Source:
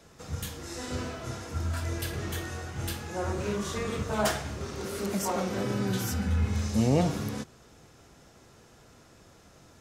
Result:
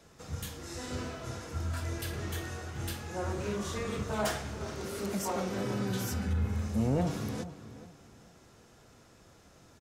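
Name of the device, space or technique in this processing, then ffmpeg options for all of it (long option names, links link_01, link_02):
saturation between pre-emphasis and de-emphasis: -filter_complex "[0:a]asettb=1/sr,asplit=3[link_01][link_02][link_03];[link_01]atrim=end=6.334[link_04];[link_02]atrim=start=6.33:end=7.07,asetpts=PTS-STARTPTS,afade=type=in:duration=0.004:curve=qsin,afade=type=out:start_time=0.736:duration=0.004:curve=qsin,equalizer=frequency=4900:width=0.64:gain=-8.5[link_05];[link_03]atrim=start=7.066[link_06];[link_04][link_05]acrossfade=duration=0.004:curve1=hsin:curve2=qsin[link_07];[link_07][link_06]acrossfade=duration=0.004:curve1=qsin:curve2=hsin,highshelf=frequency=3600:gain=9,asoftclip=type=tanh:threshold=-17dB,highshelf=frequency=3600:gain=-9,asplit=2[link_08][link_09];[link_09]adelay=423,lowpass=frequency=2200:poles=1,volume=-13dB,asplit=2[link_10][link_11];[link_11]adelay=423,lowpass=frequency=2200:poles=1,volume=0.3,asplit=2[link_12][link_13];[link_13]adelay=423,lowpass=frequency=2200:poles=1,volume=0.3[link_14];[link_08][link_10][link_12][link_14]amix=inputs=4:normalize=0,volume=-3dB"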